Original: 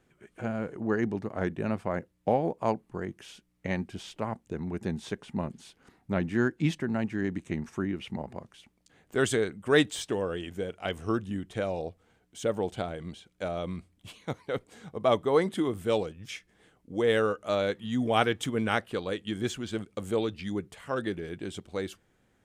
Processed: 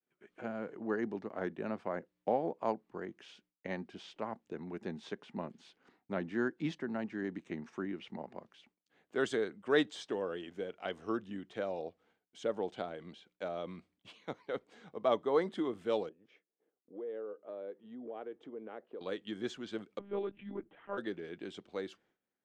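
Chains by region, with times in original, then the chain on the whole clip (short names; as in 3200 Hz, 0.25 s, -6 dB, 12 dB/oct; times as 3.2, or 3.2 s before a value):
16.09–19.01 band-pass 430 Hz, Q 1.7 + compressor 2.5:1, threshold -37 dBFS
19.99–20.98 air absorption 480 m + monotone LPC vocoder at 8 kHz 200 Hz
whole clip: three-band isolator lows -19 dB, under 190 Hz, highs -22 dB, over 5700 Hz; expander -60 dBFS; dynamic EQ 2500 Hz, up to -5 dB, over -48 dBFS, Q 2.1; gain -5.5 dB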